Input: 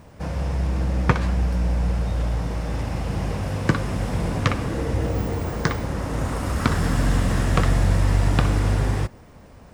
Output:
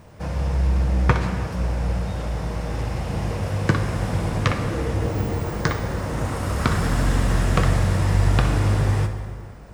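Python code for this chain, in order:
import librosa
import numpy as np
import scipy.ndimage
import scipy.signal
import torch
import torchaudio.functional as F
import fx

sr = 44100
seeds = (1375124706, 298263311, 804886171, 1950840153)

y = fx.peak_eq(x, sr, hz=260.0, db=-5.0, octaves=0.26)
y = fx.rev_plate(y, sr, seeds[0], rt60_s=2.3, hf_ratio=0.65, predelay_ms=0, drr_db=6.5)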